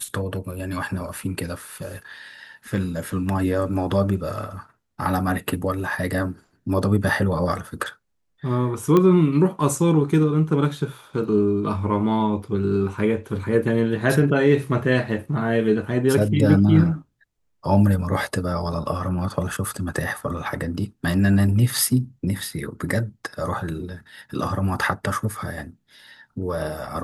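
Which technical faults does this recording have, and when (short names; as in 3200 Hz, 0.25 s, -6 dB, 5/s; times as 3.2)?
8.97 pop -8 dBFS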